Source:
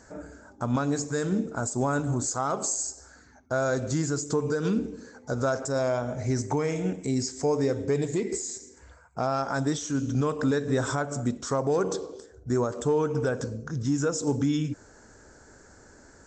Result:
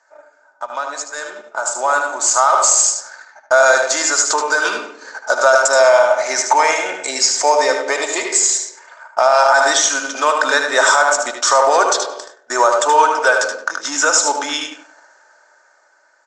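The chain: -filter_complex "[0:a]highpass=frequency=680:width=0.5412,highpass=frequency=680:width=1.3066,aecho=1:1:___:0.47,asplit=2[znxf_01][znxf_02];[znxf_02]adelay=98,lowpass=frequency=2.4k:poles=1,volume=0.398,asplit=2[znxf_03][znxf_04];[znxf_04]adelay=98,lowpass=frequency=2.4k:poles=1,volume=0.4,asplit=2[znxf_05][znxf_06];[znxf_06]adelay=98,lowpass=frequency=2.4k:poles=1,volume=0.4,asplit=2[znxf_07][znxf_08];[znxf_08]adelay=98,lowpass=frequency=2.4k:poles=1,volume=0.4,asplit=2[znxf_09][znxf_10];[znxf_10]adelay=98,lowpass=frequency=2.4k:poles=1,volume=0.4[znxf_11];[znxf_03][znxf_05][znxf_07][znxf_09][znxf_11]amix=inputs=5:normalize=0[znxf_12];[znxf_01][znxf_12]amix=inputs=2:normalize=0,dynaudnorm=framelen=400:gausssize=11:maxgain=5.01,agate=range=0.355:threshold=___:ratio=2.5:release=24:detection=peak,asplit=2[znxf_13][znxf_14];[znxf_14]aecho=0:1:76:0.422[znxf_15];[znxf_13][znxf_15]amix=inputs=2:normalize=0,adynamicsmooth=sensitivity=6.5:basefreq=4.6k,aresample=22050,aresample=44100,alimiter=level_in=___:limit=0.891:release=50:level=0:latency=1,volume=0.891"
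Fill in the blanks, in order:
3.3, 0.00794, 2.66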